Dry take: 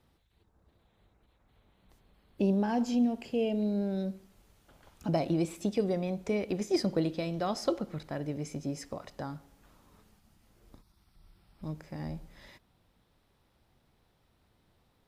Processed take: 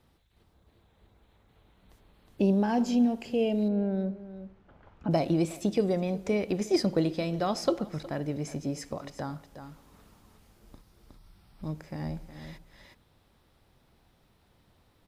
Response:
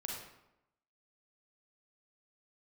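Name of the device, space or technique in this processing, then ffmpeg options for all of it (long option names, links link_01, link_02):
ducked delay: -filter_complex "[0:a]asplit=3[link_01][link_02][link_03];[link_02]adelay=364,volume=-3dB[link_04];[link_03]apad=whole_len=681034[link_05];[link_04][link_05]sidechaincompress=threshold=-44dB:ratio=8:attack=6.6:release=854[link_06];[link_01][link_06]amix=inputs=2:normalize=0,asettb=1/sr,asplit=3[link_07][link_08][link_09];[link_07]atrim=end=3.684[link_10];[link_08]atrim=start=3.68:end=5.11,asetpts=PTS-STARTPTS,afade=type=in:duration=0.004:curve=qsin,afade=type=out:start_time=1.426:duration=0.004:curve=qsin,lowpass=1900[link_11];[link_09]atrim=start=5.106[link_12];[link_10][link_11]acrossfade=duration=0.004:curve1=hsin:curve2=qsin[link_13];[link_13][link_12]acrossfade=duration=0.004:curve1=qsin:curve2=hsin,volume=3dB"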